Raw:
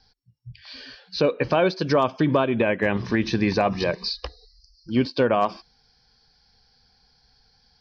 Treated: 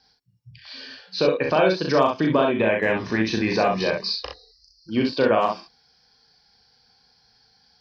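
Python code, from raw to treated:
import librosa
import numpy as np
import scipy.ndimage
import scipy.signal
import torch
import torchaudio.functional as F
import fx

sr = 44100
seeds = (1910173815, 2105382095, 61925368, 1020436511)

p1 = fx.highpass(x, sr, hz=200.0, slope=6)
y = p1 + fx.room_early_taps(p1, sr, ms=(37, 64), db=(-4.0, -5.0), dry=0)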